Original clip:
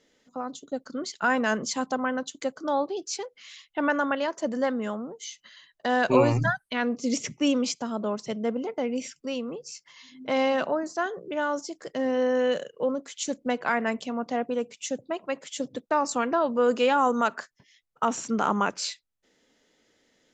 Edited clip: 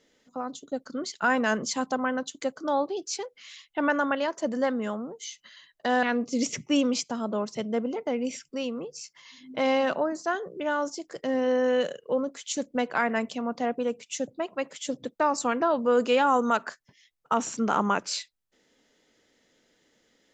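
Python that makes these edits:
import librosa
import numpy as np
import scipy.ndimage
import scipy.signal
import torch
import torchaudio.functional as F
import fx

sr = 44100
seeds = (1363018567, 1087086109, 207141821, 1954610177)

y = fx.edit(x, sr, fx.cut(start_s=6.03, length_s=0.71), tone=tone)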